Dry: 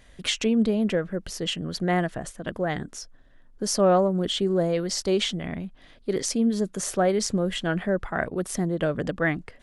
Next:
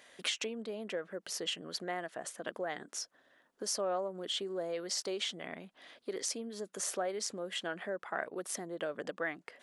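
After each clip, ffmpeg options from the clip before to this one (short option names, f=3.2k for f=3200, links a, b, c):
-af "acompressor=threshold=-34dB:ratio=3,highpass=430"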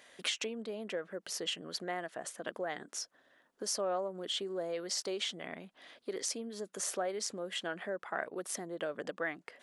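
-af anull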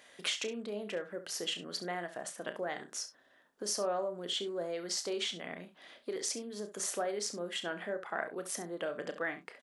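-filter_complex "[0:a]asplit=2[a][b];[b]adelay=29,volume=-13dB[c];[a][c]amix=inputs=2:normalize=0,asplit=2[d][e];[e]aecho=0:1:34|68:0.237|0.224[f];[d][f]amix=inputs=2:normalize=0"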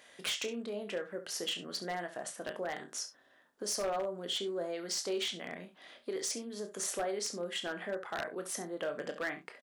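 -filter_complex "[0:a]asplit=2[a][b];[b]adelay=21,volume=-10.5dB[c];[a][c]amix=inputs=2:normalize=0,aeval=exprs='0.0422*(abs(mod(val(0)/0.0422+3,4)-2)-1)':c=same"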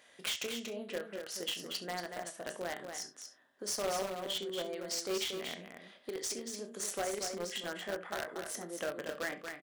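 -filter_complex "[0:a]asplit=2[a][b];[b]acrusher=bits=4:mix=0:aa=0.000001,volume=-7.5dB[c];[a][c]amix=inputs=2:normalize=0,aecho=1:1:234:0.473,volume=-3.5dB"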